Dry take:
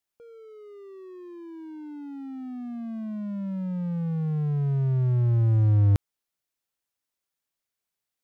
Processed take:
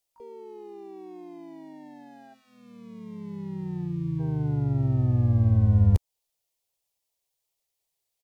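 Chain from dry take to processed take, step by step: time-frequency box 2.34–4.20 s, 420–870 Hz -25 dB; in parallel at -2 dB: compression, threshold -29 dBFS, peak gain reduction 12 dB; on the sum: static phaser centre 620 Hz, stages 4; harmony voices -12 st -17 dB, -3 st -4 dB, +12 st -10 dB; trim -1 dB

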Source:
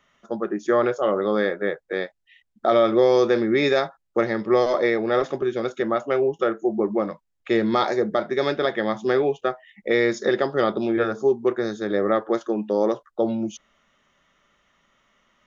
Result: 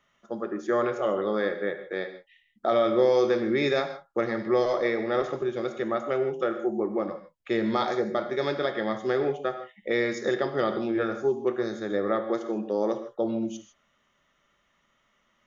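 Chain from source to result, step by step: gated-style reverb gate 180 ms flat, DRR 7.5 dB; trim -5.5 dB

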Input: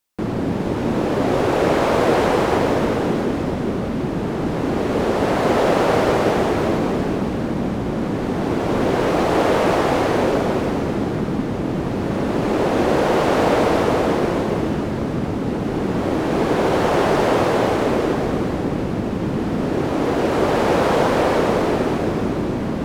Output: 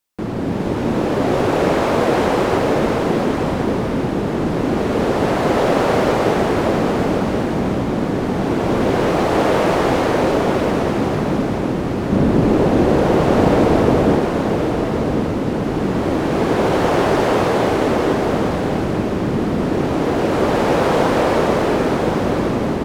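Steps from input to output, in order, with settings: 12.12–14.20 s: bass shelf 410 Hz +10 dB; level rider gain up to 3 dB; delay 1075 ms -7 dB; trim -1 dB

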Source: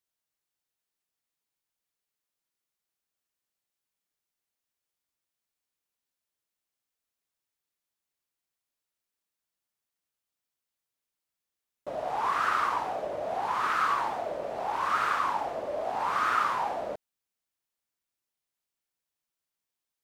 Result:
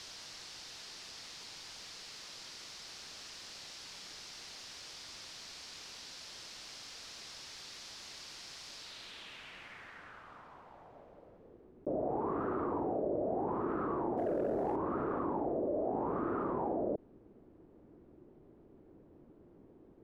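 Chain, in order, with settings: low-pass sweep 5 kHz -> 350 Hz, 8.76–11.74 s; 14.17–14.76 s: waveshaping leveller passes 1; level flattener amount 70%; trim +1 dB

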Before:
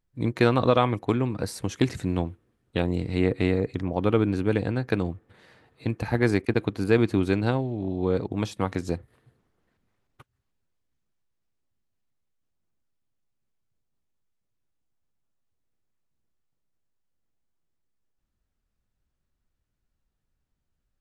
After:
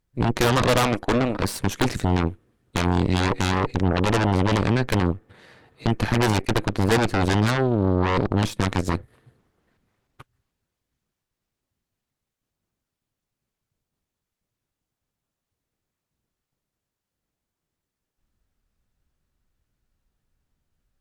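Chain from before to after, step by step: saturation -12.5 dBFS, distortion -17 dB; 0.85–1.40 s: brick-wall FIR high-pass 200 Hz; Chebyshev shaper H 5 -16 dB, 8 -7 dB, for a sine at -12.5 dBFS

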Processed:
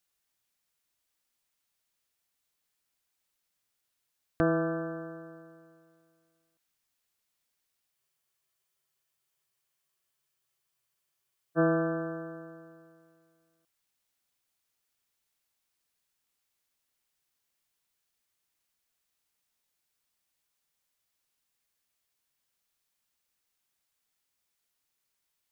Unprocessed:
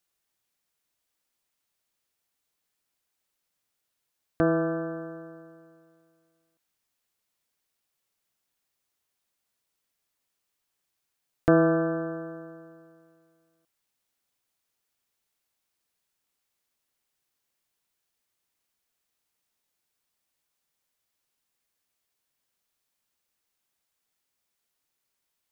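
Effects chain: peaking EQ 400 Hz -3.5 dB 2.9 oct; spectral freeze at 7.93 s, 3.65 s

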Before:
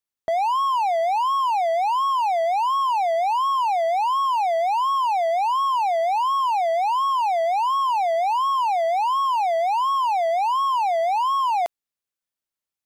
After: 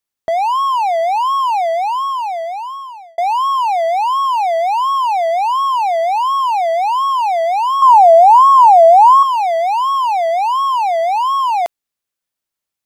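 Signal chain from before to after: 1.55–3.18 s: fade out; 7.82–9.23 s: graphic EQ 500/1000/2000/4000/8000 Hz +11/+9/-10/-4/+5 dB; trim +6 dB

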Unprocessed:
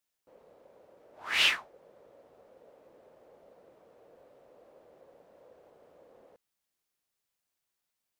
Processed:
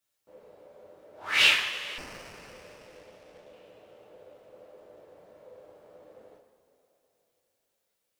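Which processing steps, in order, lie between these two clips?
two-slope reverb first 0.5 s, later 3.8 s, from -16 dB, DRR -3 dB; 1.98–3.53 s: sliding maximum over 9 samples

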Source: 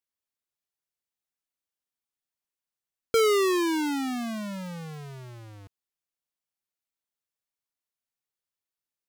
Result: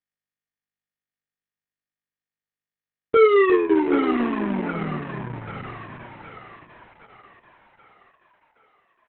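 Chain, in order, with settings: send-on-delta sampling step -55 dBFS; low-pass 2.3 kHz 24 dB/octave; band-stop 1.5 kHz, Q 27; doubling 25 ms -8 dB; two-band feedback delay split 650 Hz, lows 355 ms, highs 774 ms, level -7 dB; trim +6.5 dB; Opus 6 kbps 48 kHz

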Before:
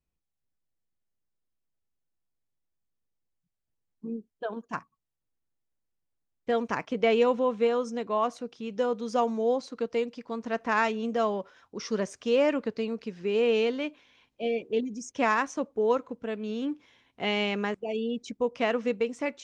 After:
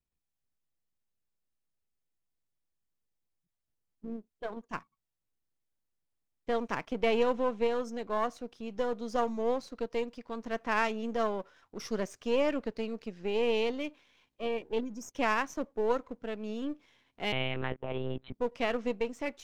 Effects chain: partial rectifier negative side -7 dB; 17.32–18.34 s: monotone LPC vocoder at 8 kHz 130 Hz; trim -2 dB

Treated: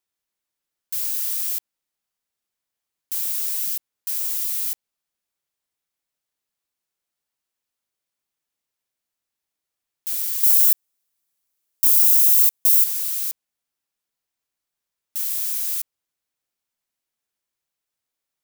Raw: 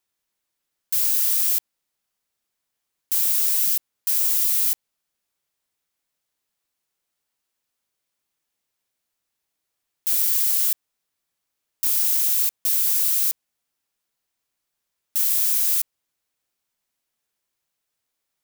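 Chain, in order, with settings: 10.43–12.84 s: treble shelf 6 kHz +11 dB; trim -4.5 dB

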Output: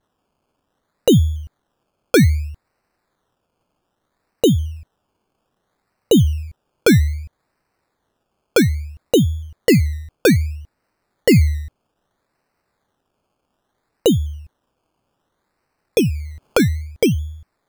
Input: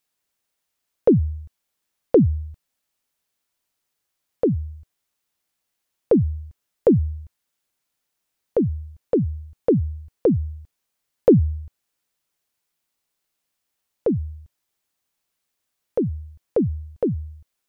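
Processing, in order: vibrato 1.1 Hz 55 cents; decimation with a swept rate 18×, swing 60% 0.62 Hz; loudness maximiser +12 dB; 15.99–16.60 s: three bands compressed up and down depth 70%; trim -5.5 dB

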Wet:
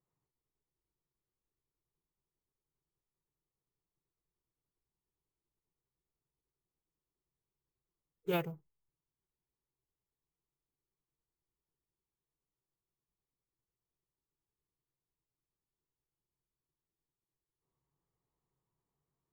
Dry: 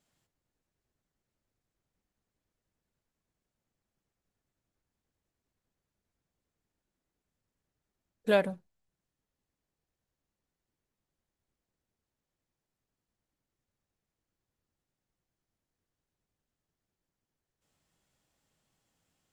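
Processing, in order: local Wiener filter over 15 samples; careless resampling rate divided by 3×, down none, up hold; formant-preserving pitch shift -2.5 st; rippled EQ curve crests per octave 0.71, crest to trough 9 dB; trim -8 dB

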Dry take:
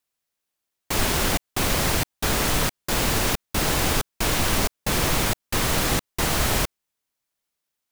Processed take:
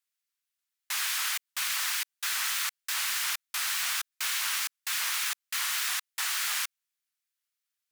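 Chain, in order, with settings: high-pass 1.3 kHz 24 dB/octave; vibrato with a chosen wave saw up 3.4 Hz, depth 160 cents; trim -4 dB

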